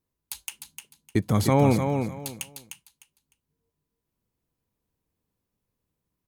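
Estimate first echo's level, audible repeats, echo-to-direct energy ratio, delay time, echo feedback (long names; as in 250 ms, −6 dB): −6.5 dB, 3, −6.5 dB, 303 ms, 22%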